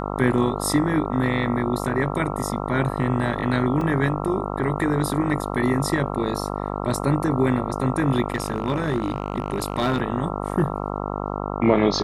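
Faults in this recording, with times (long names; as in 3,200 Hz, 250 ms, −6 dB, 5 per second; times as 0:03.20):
mains buzz 50 Hz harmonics 27 −28 dBFS
0:03.81: drop-out 2.6 ms
0:08.30–0:10.02: clipping −16.5 dBFS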